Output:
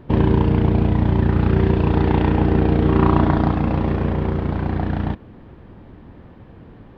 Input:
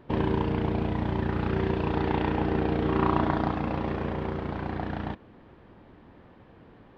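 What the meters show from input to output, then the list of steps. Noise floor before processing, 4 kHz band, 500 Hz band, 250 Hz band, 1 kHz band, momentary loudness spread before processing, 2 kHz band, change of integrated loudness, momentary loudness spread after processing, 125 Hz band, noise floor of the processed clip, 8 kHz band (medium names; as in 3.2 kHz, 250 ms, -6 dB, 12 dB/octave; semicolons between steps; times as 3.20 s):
-54 dBFS, +4.5 dB, +7.0 dB, +9.5 dB, +5.5 dB, 8 LU, +4.5 dB, +10.0 dB, 7 LU, +12.5 dB, -44 dBFS, no reading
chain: bass shelf 250 Hz +10 dB; trim +4.5 dB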